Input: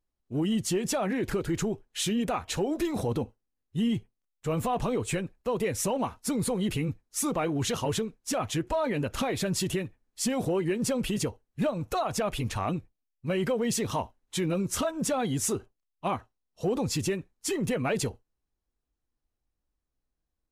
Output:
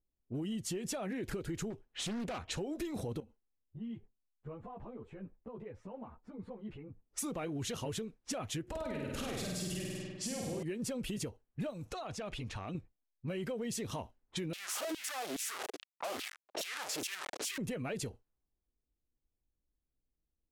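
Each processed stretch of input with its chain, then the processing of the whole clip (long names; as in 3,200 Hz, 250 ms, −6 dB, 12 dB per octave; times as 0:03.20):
0:01.70–0:02.39: hard clipping −29 dBFS + highs frequency-modulated by the lows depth 0.41 ms
0:03.20–0:07.05: downward compressor, threshold −38 dBFS + string-ensemble chorus
0:08.63–0:10.63: downward compressor, threshold −29 dBFS + flutter between parallel walls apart 8.6 metres, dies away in 1.4 s
0:11.70–0:12.75: high-shelf EQ 5,100 Hz +11.5 dB + downward compressor 4 to 1, threshold −34 dBFS
0:14.53–0:17.58: sign of each sample alone + auto-filter high-pass saw down 2.4 Hz 290–3,400 Hz
whole clip: low-pass that shuts in the quiet parts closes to 550 Hz, open at −29 dBFS; dynamic equaliser 980 Hz, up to −5 dB, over −44 dBFS, Q 1.5; downward compressor 4 to 1, threshold −34 dBFS; level −2.5 dB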